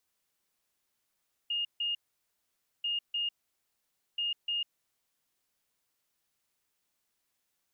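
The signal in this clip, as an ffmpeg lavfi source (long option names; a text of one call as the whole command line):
ffmpeg -f lavfi -i "aevalsrc='0.0355*sin(2*PI*2840*t)*clip(min(mod(mod(t,1.34),0.3),0.15-mod(mod(t,1.34),0.3))/0.005,0,1)*lt(mod(t,1.34),0.6)':duration=4.02:sample_rate=44100" out.wav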